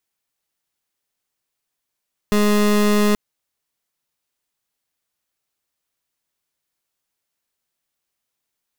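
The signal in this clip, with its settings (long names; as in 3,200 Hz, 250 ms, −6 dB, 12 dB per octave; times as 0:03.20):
pulse wave 208 Hz, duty 27% −15.5 dBFS 0.83 s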